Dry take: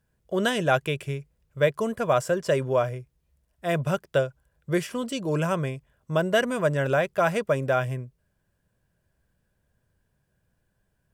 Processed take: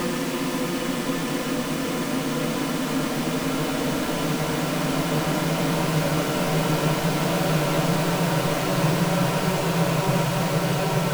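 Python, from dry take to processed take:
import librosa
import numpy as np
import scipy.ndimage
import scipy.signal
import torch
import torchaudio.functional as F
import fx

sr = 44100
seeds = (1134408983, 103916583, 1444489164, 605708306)

y = fx.halfwave_hold(x, sr)
y = fx.hum_notches(y, sr, base_hz=50, count=9)
y = fx.paulstretch(y, sr, seeds[0], factor=18.0, window_s=1.0, from_s=4.99)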